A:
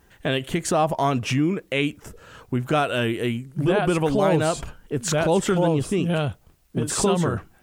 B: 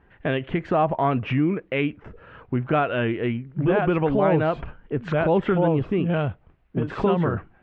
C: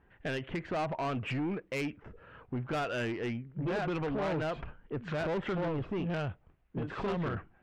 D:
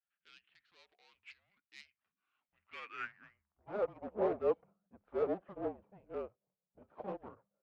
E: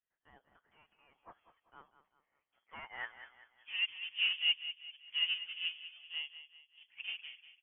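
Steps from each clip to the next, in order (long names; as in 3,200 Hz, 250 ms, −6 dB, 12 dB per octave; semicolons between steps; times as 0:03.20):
low-pass filter 2,500 Hz 24 dB per octave
dynamic equaliser 2,200 Hz, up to +4 dB, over −37 dBFS, Q 0.7; soft clipping −21.5 dBFS, distortion −9 dB; level −7.5 dB
frequency shifter −210 Hz; band-pass filter sweep 4,000 Hz → 550 Hz, 0:02.33–0:03.92; expander for the loud parts 2.5 to 1, over −52 dBFS; level +10 dB
voice inversion scrambler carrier 3,300 Hz; on a send: repeating echo 194 ms, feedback 42%, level −12 dB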